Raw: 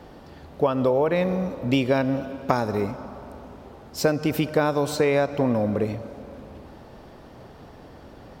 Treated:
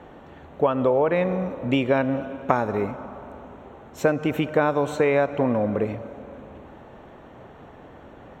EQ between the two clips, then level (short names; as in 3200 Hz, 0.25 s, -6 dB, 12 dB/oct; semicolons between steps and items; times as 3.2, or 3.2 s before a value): running mean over 9 samples; tilt +1.5 dB/oct; +2.5 dB